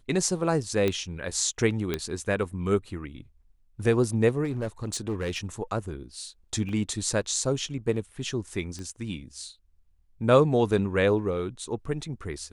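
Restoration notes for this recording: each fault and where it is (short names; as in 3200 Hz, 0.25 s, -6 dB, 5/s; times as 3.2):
0.88 pop -13 dBFS
1.94 pop -13 dBFS
4.44–5.38 clipped -25 dBFS
6.69 gap 2.5 ms
8.79 pop -26 dBFS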